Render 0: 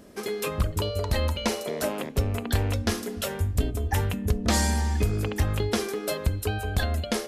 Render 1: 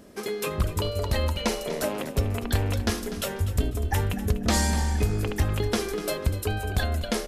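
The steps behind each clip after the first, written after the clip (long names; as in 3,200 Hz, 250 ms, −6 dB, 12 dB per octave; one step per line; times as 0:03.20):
echo with shifted repeats 246 ms, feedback 30%, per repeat −44 Hz, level −13 dB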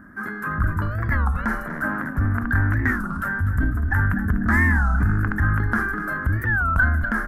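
drawn EQ curve 290 Hz 0 dB, 440 Hz −21 dB, 950 Hz −3 dB, 1,600 Hz +14 dB, 2,600 Hz −26 dB, 3,700 Hz −30 dB, 8,400 Hz −24 dB, 12,000 Hz −15 dB
transient designer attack −5 dB, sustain +4 dB
wow of a warped record 33 1/3 rpm, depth 250 cents
level +5.5 dB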